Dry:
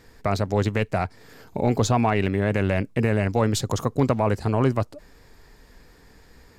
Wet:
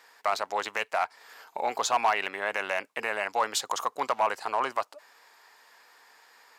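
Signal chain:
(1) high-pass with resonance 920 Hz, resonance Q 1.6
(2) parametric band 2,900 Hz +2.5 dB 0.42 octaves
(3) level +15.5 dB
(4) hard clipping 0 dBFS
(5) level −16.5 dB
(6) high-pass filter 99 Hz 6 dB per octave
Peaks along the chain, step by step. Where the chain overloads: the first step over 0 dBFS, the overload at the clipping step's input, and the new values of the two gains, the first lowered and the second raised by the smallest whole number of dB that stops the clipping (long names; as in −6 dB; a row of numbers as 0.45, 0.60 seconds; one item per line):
−9.0, −9.0, +6.5, 0.0, −16.5, −15.5 dBFS
step 3, 6.5 dB
step 3 +8.5 dB, step 5 −9.5 dB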